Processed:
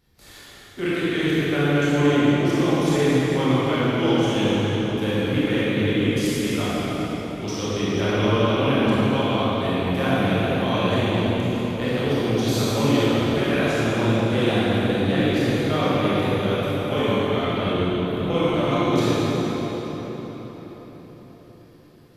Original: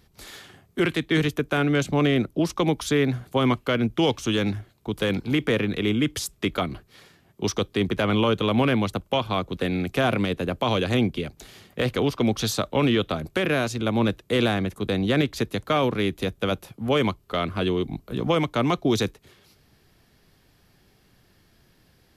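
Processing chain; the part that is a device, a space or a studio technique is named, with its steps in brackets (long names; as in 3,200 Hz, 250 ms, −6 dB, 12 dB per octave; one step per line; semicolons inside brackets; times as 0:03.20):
cathedral (convolution reverb RT60 5.0 s, pre-delay 20 ms, DRR −11 dB)
level −9 dB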